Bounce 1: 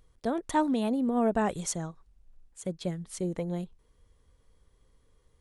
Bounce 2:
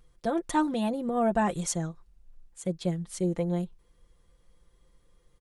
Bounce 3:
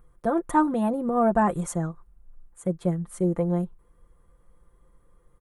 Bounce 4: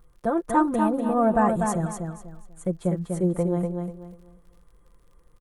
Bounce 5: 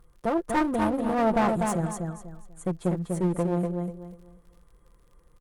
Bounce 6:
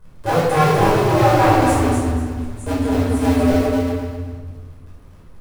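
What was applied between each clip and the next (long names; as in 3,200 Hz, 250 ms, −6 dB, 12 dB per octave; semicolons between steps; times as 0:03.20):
comb filter 5.8 ms
drawn EQ curve 780 Hz 0 dB, 1,200 Hz +4 dB, 2,800 Hz −12 dB, 5,000 Hz −18 dB, 9,700 Hz −3 dB; level +4 dB
repeating echo 245 ms, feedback 27%, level −5 dB; surface crackle 58 per second −50 dBFS
asymmetric clip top −28 dBFS
sub-harmonics by changed cycles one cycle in 2, inverted; rectangular room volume 690 cubic metres, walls mixed, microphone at 5.1 metres; level −1.5 dB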